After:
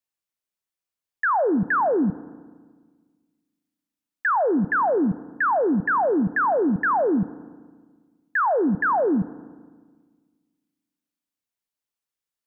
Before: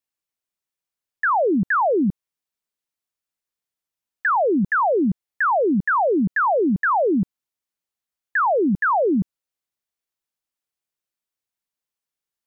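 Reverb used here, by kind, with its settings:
feedback delay network reverb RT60 1.5 s, low-frequency decay 1.3×, high-frequency decay 0.7×, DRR 17.5 dB
level −2 dB

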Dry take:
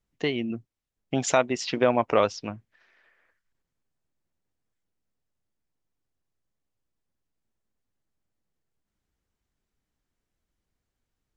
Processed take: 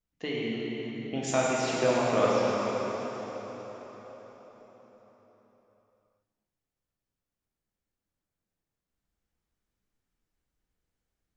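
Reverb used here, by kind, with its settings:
dense smooth reverb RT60 4.9 s, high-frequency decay 0.8×, DRR −6.5 dB
level −9 dB

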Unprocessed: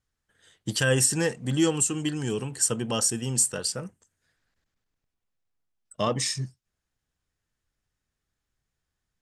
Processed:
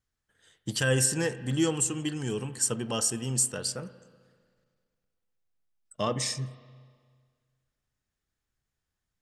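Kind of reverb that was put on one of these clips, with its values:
spring reverb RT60 1.8 s, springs 31/38 ms, chirp 60 ms, DRR 13.5 dB
level −3 dB

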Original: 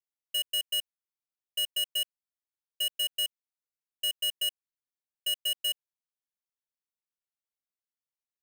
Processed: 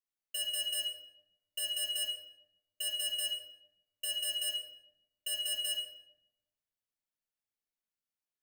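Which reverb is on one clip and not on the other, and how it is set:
rectangular room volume 280 cubic metres, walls mixed, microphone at 1.5 metres
level −6 dB

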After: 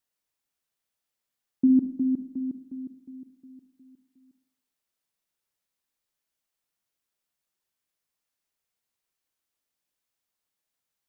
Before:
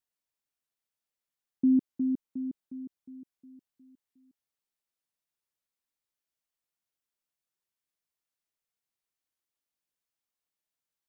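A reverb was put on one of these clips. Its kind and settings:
four-comb reverb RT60 0.64 s, combs from 29 ms, DRR 8.5 dB
level +4.5 dB

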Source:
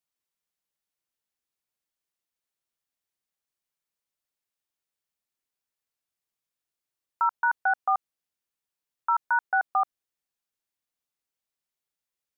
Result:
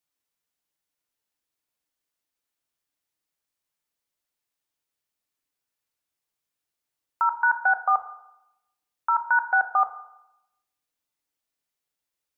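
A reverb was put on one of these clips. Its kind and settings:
feedback delay network reverb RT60 0.88 s, low-frequency decay 0.8×, high-frequency decay 0.55×, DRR 7 dB
level +2.5 dB

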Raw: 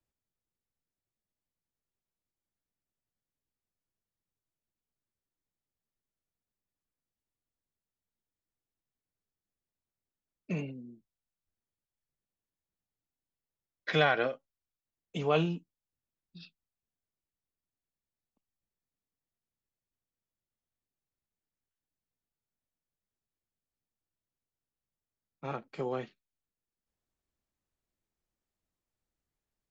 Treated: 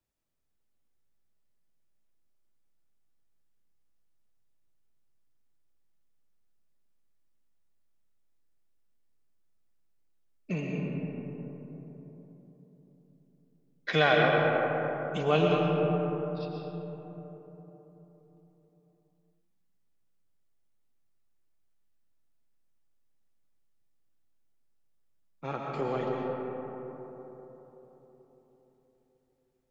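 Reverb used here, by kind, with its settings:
comb and all-pass reverb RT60 4.2 s, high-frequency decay 0.3×, pre-delay 75 ms, DRR −2 dB
level +1.5 dB

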